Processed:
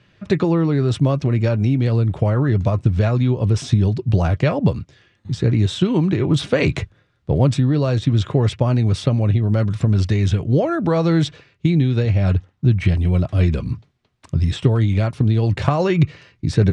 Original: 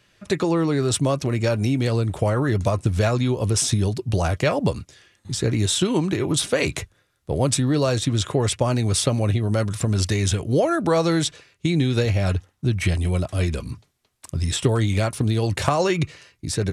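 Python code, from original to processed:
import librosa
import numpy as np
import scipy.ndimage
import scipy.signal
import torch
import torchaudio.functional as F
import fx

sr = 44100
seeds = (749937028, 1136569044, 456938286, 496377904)

y = scipy.signal.sosfilt(scipy.signal.butter(2, 3800.0, 'lowpass', fs=sr, output='sos'), x)
y = fx.peak_eq(y, sr, hz=140.0, db=8.0, octaves=2.0)
y = fx.rider(y, sr, range_db=4, speed_s=0.5)
y = y * librosa.db_to_amplitude(-1.0)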